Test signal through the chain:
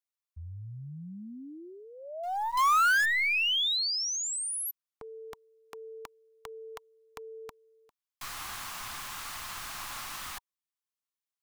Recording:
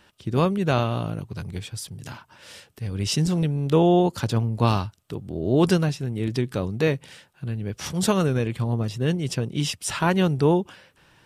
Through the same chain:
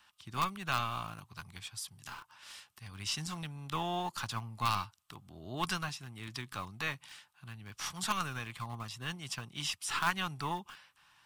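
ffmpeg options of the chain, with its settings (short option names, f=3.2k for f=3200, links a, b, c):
-filter_complex "[0:a]lowshelf=f=700:t=q:w=3:g=-13.5,bandreject=f=950:w=11,acrossover=split=380|1200|1800[a][b][c][d];[b]alimiter=level_in=0.5dB:limit=-24dB:level=0:latency=1:release=148,volume=-0.5dB[e];[c]acrusher=bits=5:dc=4:mix=0:aa=0.000001[f];[a][e][f][d]amix=inputs=4:normalize=0,acrossover=split=3800[g][h];[h]acompressor=threshold=-28dB:ratio=4:attack=1:release=60[i];[g][i]amix=inputs=2:normalize=0,volume=-5.5dB"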